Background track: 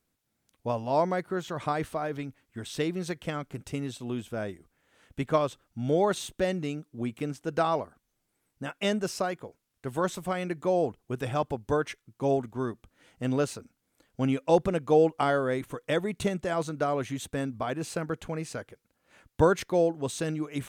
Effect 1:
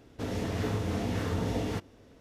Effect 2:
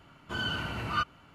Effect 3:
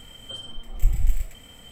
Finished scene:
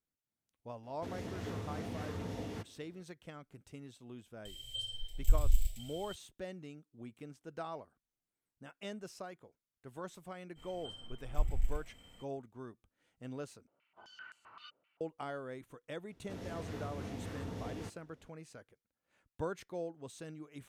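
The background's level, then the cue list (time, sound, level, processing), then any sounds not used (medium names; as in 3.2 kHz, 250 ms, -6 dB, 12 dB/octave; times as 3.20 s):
background track -16.5 dB
0.83 s: add 1 -10 dB + high-pass 65 Hz
4.45 s: add 3 -6.5 dB + FFT filter 120 Hz 0 dB, 180 Hz -30 dB, 420 Hz -12 dB, 610 Hz -10 dB, 1.2 kHz -27 dB, 3.6 kHz +8 dB, 6.5 kHz +3 dB
10.55 s: add 3 -11.5 dB, fades 0.05 s + treble shelf 7.7 kHz -8 dB
13.67 s: replace with 2 -10 dB + step-sequenced band-pass 7.7 Hz 520–7900 Hz
16.10 s: add 1 -12 dB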